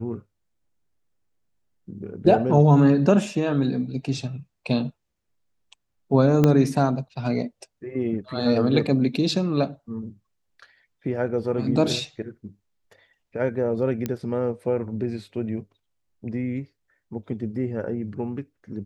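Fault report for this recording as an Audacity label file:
6.440000	6.440000	pop -7 dBFS
14.060000	14.060000	pop -13 dBFS

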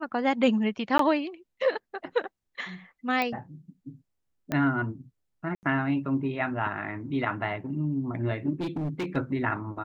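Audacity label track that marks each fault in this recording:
0.980000	0.990000	gap 13 ms
3.220000	3.220000	pop -15 dBFS
4.520000	4.520000	pop -15 dBFS
5.550000	5.630000	gap 79 ms
8.600000	9.170000	clipped -27 dBFS

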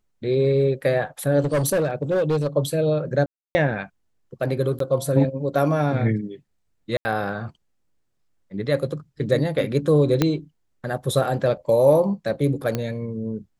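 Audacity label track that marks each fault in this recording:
1.400000	2.470000	clipped -17 dBFS
3.260000	3.550000	gap 0.29 s
4.790000	4.800000	gap 13 ms
6.970000	7.050000	gap 80 ms
10.220000	10.220000	pop -5 dBFS
12.750000	12.750000	pop -11 dBFS

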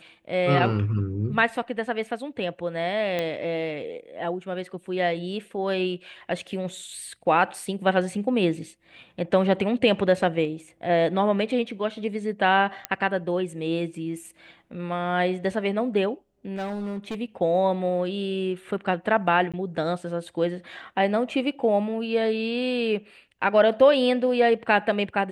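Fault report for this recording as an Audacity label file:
3.190000	3.190000	pop -14 dBFS
12.850000	12.850000	pop -10 dBFS
16.550000	17.150000	clipped -27 dBFS
19.520000	19.540000	gap 16 ms

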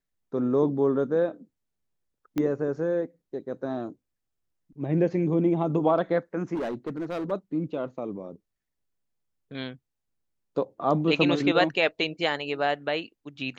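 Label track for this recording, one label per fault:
2.380000	2.380000	pop -16 dBFS
6.540000	7.320000	clipped -27 dBFS

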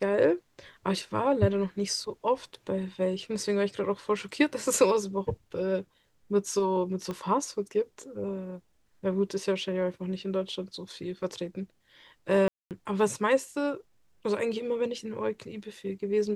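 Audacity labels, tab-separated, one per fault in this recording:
7.110000	7.110000	pop -22 dBFS
12.480000	12.710000	gap 0.228 s

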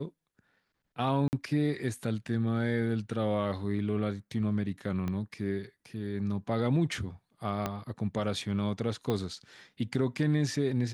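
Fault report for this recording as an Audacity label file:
1.280000	1.330000	gap 49 ms
5.080000	5.080000	pop -22 dBFS
7.660000	7.660000	pop -16 dBFS
9.100000	9.100000	pop -18 dBFS

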